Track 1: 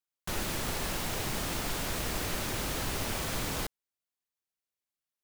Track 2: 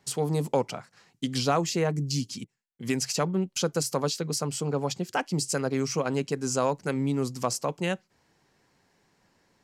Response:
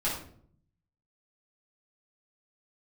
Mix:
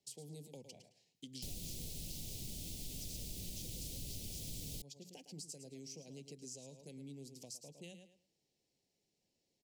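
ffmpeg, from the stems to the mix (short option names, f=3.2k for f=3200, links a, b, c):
-filter_complex "[0:a]adelay=1150,volume=0dB[a];[1:a]lowshelf=f=450:g=-7.5,bandreject=f=60:t=h:w=6,bandreject=f=120:t=h:w=6,bandreject=f=180:t=h:w=6,volume=-12dB,asplit=2[b][c];[c]volume=-12dB,aecho=0:1:108|216|324|432:1|0.22|0.0484|0.0106[d];[a][b][d]amix=inputs=3:normalize=0,acrossover=split=240|3000[e][f][g];[f]acompressor=threshold=-48dB:ratio=6[h];[e][h][g]amix=inputs=3:normalize=0,asuperstop=centerf=1300:order=4:qfactor=0.56,acompressor=threshold=-50dB:ratio=2"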